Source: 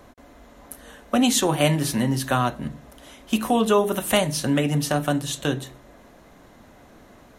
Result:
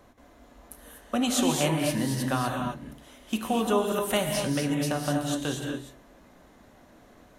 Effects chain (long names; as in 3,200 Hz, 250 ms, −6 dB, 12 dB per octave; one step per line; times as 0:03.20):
reverb whose tail is shaped and stops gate 270 ms rising, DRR 2 dB
level −7 dB